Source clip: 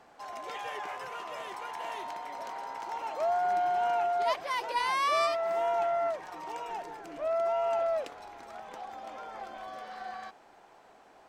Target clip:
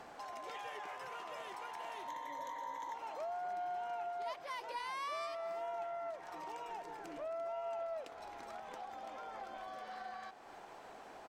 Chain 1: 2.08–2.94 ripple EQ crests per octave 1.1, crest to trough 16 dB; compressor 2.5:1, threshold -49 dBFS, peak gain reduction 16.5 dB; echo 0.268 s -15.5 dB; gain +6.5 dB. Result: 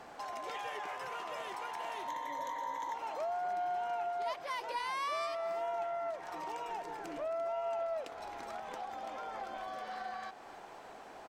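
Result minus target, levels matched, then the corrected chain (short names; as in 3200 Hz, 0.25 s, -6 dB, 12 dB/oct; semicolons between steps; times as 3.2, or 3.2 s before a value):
compressor: peak gain reduction -5 dB
2.08–2.94 ripple EQ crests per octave 1.1, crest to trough 16 dB; compressor 2.5:1, threshold -57 dBFS, peak gain reduction 21 dB; echo 0.268 s -15.5 dB; gain +6.5 dB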